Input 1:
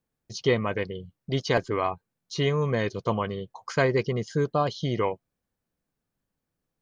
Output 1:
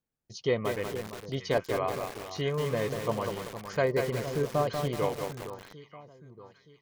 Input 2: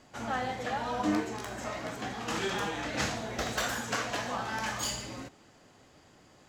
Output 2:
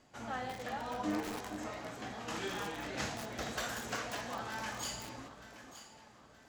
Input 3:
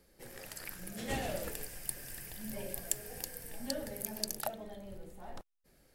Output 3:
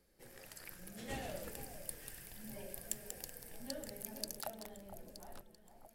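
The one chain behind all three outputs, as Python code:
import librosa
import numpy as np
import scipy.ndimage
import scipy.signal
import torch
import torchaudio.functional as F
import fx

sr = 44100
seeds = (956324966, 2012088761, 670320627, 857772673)

y = fx.echo_alternate(x, sr, ms=461, hz=1100.0, feedback_pct=62, wet_db=-9)
y = fx.dynamic_eq(y, sr, hz=570.0, q=2.0, threshold_db=-33.0, ratio=4.0, max_db=6)
y = fx.echo_crushed(y, sr, ms=189, feedback_pct=55, bits=5, wet_db=-4.5)
y = F.gain(torch.from_numpy(y), -7.0).numpy()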